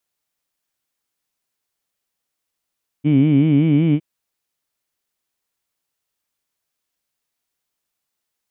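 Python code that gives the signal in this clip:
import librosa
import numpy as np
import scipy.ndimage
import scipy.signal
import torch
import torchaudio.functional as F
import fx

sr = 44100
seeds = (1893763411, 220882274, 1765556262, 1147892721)

y = fx.vowel(sr, seeds[0], length_s=0.96, word='heed', hz=141.0, glide_st=2.0, vibrato_hz=5.3, vibrato_st=1.35)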